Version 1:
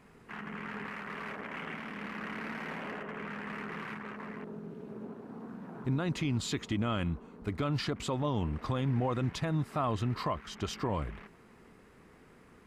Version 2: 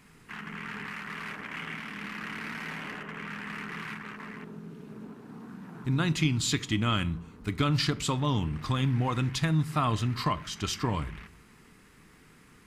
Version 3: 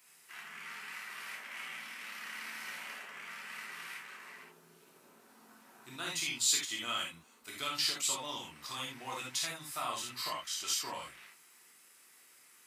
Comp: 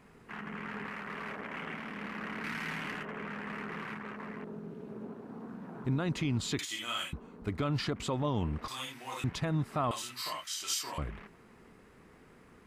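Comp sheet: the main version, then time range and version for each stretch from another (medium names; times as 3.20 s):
1
2.44–3.05 s: from 2
6.59–7.13 s: from 3
8.68–9.24 s: from 3
9.91–10.98 s: from 3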